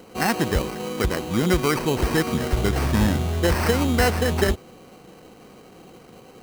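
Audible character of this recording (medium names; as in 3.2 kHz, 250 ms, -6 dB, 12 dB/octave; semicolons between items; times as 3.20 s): aliases and images of a low sample rate 3.5 kHz, jitter 0%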